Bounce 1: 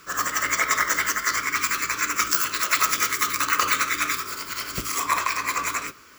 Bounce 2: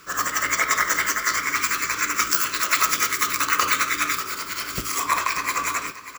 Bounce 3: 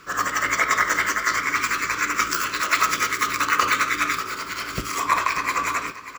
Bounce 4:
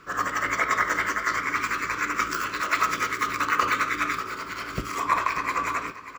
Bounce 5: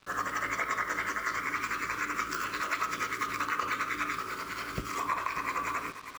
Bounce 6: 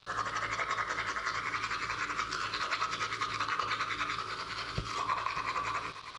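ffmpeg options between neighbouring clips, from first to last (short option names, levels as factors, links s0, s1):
-af "aecho=1:1:590:0.2,volume=1.12"
-af "lowpass=f=3300:p=1,volume=1.33"
-af "highshelf=f=2800:g=-9.5,volume=0.891"
-af "acrusher=bits=6:mix=0:aa=0.5,acompressor=threshold=0.0501:ratio=2.5,volume=0.668"
-af "equalizer=f=125:t=o:w=1:g=5,equalizer=f=250:t=o:w=1:g=-10,equalizer=f=2000:t=o:w=1:g=-5,equalizer=f=4000:t=o:w=1:g=10,equalizer=f=8000:t=o:w=1:g=-9,aresample=22050,aresample=44100"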